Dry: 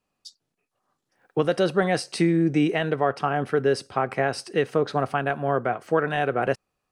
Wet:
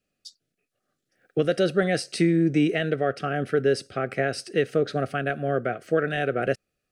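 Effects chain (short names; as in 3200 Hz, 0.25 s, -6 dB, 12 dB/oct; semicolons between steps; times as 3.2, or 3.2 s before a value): Butterworth band-stop 950 Hz, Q 1.5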